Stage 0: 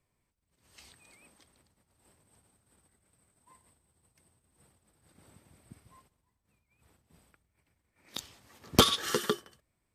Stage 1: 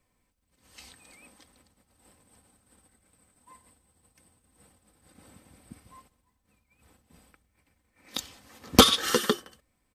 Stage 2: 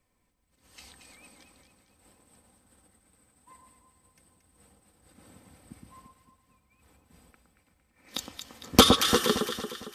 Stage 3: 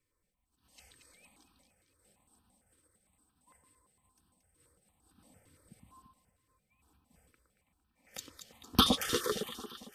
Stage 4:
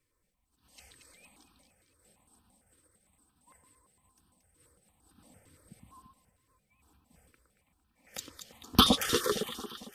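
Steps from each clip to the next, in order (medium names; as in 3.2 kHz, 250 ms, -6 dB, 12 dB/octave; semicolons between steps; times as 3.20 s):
comb 3.9 ms, depth 43%; trim +5 dB
echo whose repeats swap between lows and highs 114 ms, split 1.3 kHz, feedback 69%, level -4 dB; trim -1 dB
stepped phaser 8.8 Hz 200–2100 Hz; trim -6 dB
vibrato 12 Hz 39 cents; trim +3.5 dB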